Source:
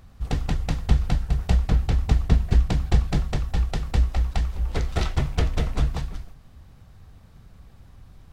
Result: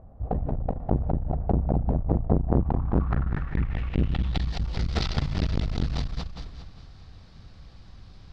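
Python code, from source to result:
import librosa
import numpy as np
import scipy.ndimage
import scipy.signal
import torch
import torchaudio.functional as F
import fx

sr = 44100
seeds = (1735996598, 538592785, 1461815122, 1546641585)

y = fx.reverse_delay_fb(x, sr, ms=203, feedback_pct=45, wet_db=-6.5)
y = fx.filter_sweep_lowpass(y, sr, from_hz=660.0, to_hz=4700.0, start_s=2.36, end_s=4.58, q=3.0)
y = fx.transformer_sat(y, sr, knee_hz=370.0)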